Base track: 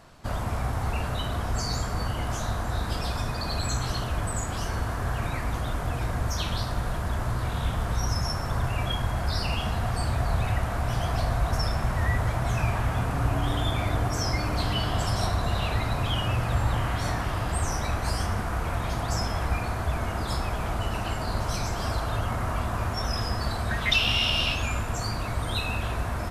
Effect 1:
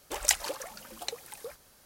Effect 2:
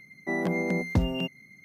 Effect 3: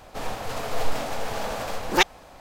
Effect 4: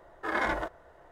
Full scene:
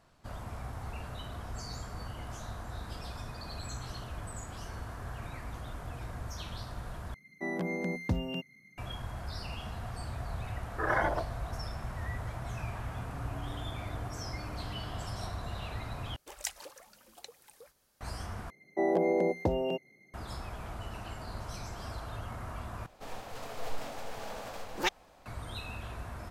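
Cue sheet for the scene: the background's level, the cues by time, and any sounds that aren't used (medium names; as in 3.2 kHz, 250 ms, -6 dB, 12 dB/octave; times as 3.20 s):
base track -12.5 dB
7.14 s: replace with 2 -6.5 dB
10.55 s: add 4 + resonances exaggerated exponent 2
16.16 s: replace with 1 -12.5 dB
18.50 s: replace with 2 -9.5 dB + high-order bell 540 Hz +14 dB
22.86 s: replace with 3 -11.5 dB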